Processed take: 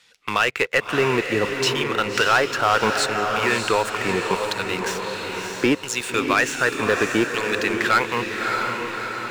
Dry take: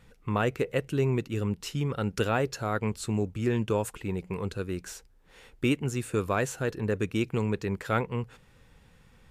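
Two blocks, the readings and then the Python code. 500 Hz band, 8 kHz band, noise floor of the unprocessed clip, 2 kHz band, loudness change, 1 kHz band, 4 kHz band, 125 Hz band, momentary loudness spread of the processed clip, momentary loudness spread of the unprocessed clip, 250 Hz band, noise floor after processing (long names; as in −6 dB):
+7.5 dB, +11.5 dB, −59 dBFS, +16.5 dB, +8.5 dB, +13.5 dB, +16.5 dB, −3.5 dB, 7 LU, 7 LU, +4.0 dB, −37 dBFS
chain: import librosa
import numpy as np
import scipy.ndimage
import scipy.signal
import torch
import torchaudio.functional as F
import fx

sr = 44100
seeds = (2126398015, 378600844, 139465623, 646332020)

p1 = fx.filter_lfo_bandpass(x, sr, shape='saw_down', hz=0.69, low_hz=850.0, high_hz=4800.0, q=1.2)
p2 = fx.leveller(p1, sr, passes=3)
p3 = p2 + fx.echo_diffused(p2, sr, ms=621, feedback_pct=47, wet_db=-6, dry=0)
p4 = fx.band_squash(p3, sr, depth_pct=40)
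y = p4 * librosa.db_to_amplitude(8.5)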